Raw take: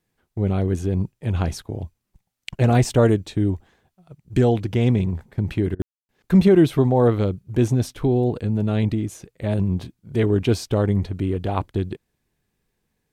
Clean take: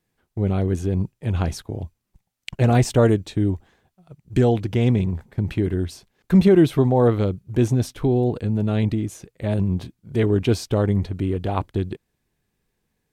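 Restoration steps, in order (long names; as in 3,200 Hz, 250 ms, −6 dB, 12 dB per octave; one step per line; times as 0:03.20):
ambience match 0:05.82–0:06.09
repair the gap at 0:05.75, 43 ms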